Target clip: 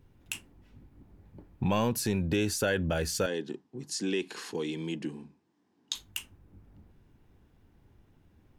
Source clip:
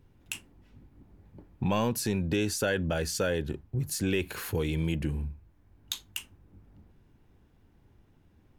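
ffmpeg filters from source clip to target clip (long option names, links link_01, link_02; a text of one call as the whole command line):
ffmpeg -i in.wav -filter_complex "[0:a]asettb=1/sr,asplit=3[link_01][link_02][link_03];[link_01]atrim=end=3.264[link_04];[link_02]atrim=start=3.26:end=5.95,asetpts=PTS-STARTPTS,afade=type=in:duration=0.004:curve=qsin,afade=type=out:start_time=2.686:duration=0.004:curve=qsin,highpass=frequency=210:width=0.5412,highpass=frequency=210:width=1.3066,equalizer=frequency=580:width_type=q:width=4:gain=-10,equalizer=frequency=1400:width_type=q:width=4:gain=-7,equalizer=frequency=2300:width_type=q:width=4:gain=-6,equalizer=frequency=5200:width_type=q:width=4:gain=4,lowpass=frequency=8300:width=0.5412,lowpass=frequency=8300:width=1.3066[link_05];[link_03]atrim=start=5.946[link_06];[link_04][link_05]acrossfade=duration=0.004:curve1=hsin:curve2=qsin[link_07];[link_07][link_06]acrossfade=duration=0.004:curve1=qsin:curve2=hsin" out.wav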